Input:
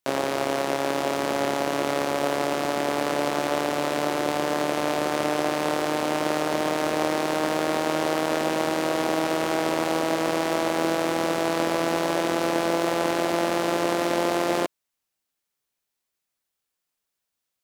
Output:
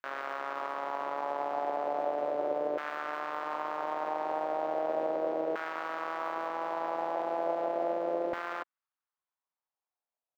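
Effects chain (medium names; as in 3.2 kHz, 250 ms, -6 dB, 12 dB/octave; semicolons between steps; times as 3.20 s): peak limiter -14 dBFS, peak gain reduction 5.5 dB; tempo 1.7×; LFO band-pass saw down 0.36 Hz 510–1500 Hz; decimation joined by straight lines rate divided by 2×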